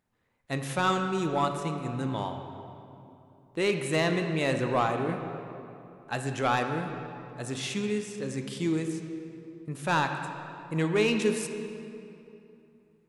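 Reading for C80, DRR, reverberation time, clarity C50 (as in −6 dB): 7.0 dB, 5.0 dB, 2.9 s, 6.0 dB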